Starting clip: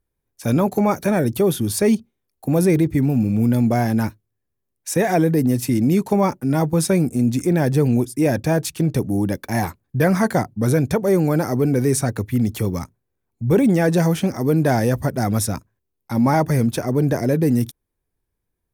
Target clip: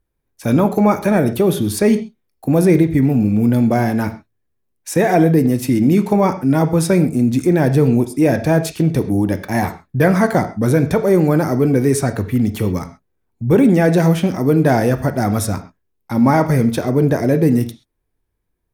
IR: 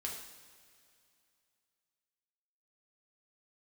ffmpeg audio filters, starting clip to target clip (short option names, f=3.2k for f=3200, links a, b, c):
-filter_complex "[0:a]asplit=2[a][b];[1:a]atrim=start_sample=2205,atrim=end_sample=6174,lowpass=4.4k[c];[b][c]afir=irnorm=-1:irlink=0,volume=-2dB[d];[a][d]amix=inputs=2:normalize=0"